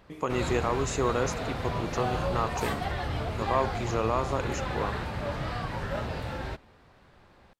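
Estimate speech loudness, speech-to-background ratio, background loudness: −31.5 LKFS, 1.5 dB, −33.0 LKFS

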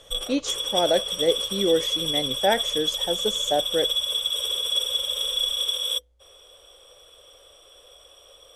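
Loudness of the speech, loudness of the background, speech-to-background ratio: −26.5 LKFS, −24.0 LKFS, −2.5 dB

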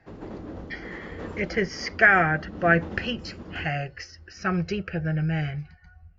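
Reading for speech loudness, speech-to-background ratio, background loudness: −24.5 LKFS, 15.5 dB, −40.0 LKFS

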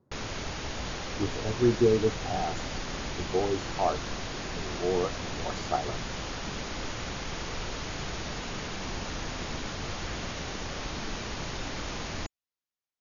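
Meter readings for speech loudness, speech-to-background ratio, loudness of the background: −30.0 LKFS, 5.5 dB, −35.5 LKFS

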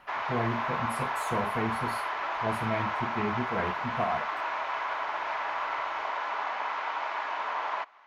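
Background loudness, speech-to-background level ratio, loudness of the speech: −32.0 LKFS, −2.5 dB, −34.5 LKFS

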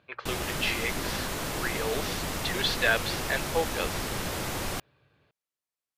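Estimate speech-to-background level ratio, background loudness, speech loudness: 1.5 dB, −32.5 LKFS, −31.0 LKFS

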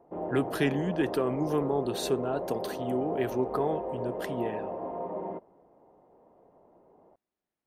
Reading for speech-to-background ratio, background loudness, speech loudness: 4.5 dB, −36.0 LKFS, −31.5 LKFS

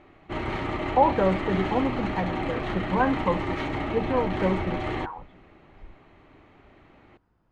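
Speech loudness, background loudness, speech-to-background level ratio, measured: −27.0 LKFS, −30.5 LKFS, 3.5 dB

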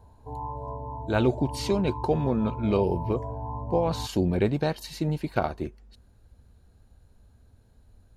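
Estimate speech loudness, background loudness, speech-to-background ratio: −27.5 LKFS, −36.0 LKFS, 8.5 dB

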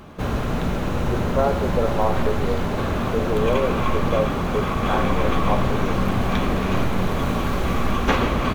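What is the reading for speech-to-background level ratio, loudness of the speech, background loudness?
−3.0 dB, −26.5 LKFS, −23.5 LKFS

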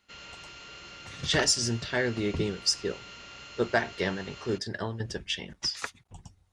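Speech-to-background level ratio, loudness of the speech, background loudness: 15.0 dB, −29.5 LKFS, −44.5 LKFS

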